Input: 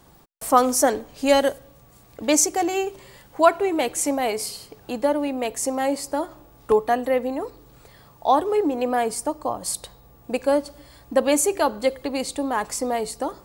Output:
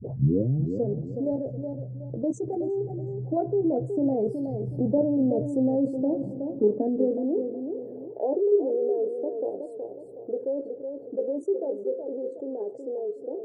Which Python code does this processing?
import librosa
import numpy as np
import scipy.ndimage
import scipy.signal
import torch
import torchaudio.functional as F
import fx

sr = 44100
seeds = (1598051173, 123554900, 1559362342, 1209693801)

p1 = fx.tape_start_head(x, sr, length_s=1.0)
p2 = fx.doppler_pass(p1, sr, speed_mps=8, closest_m=7.3, pass_at_s=5.25)
p3 = fx.spec_topn(p2, sr, count=64)
p4 = fx.peak_eq(p3, sr, hz=130.0, db=6.5, octaves=0.32)
p5 = fx.level_steps(p4, sr, step_db=10)
p6 = fx.filter_sweep_highpass(p5, sr, from_hz=120.0, to_hz=410.0, start_s=5.49, end_s=7.64, q=4.0)
p7 = scipy.signal.sosfilt(scipy.signal.cheby2(4, 40, 1100.0, 'lowpass', fs=sr, output='sos'), p6)
p8 = fx.doubler(p7, sr, ms=15.0, db=-8.0)
p9 = p8 + fx.echo_feedback(p8, sr, ms=370, feedback_pct=19, wet_db=-12.5, dry=0)
y = fx.env_flatten(p9, sr, amount_pct=50)